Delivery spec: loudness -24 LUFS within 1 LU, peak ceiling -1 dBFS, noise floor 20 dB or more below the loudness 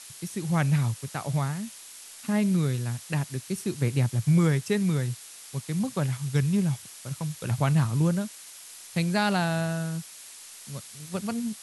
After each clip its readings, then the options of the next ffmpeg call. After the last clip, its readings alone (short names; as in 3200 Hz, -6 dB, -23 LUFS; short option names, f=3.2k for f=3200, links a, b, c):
noise floor -46 dBFS; noise floor target -48 dBFS; loudness -27.5 LUFS; peak -10.0 dBFS; loudness target -24.0 LUFS
-> -af "afftdn=nr=6:nf=-46"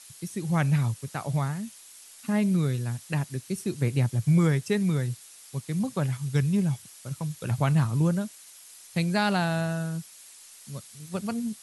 noise floor -50 dBFS; loudness -27.5 LUFS; peak -10.0 dBFS; loudness target -24.0 LUFS
-> -af "volume=3.5dB"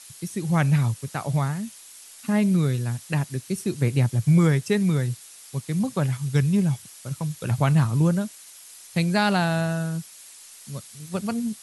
loudness -24.0 LUFS; peak -6.5 dBFS; noise floor -46 dBFS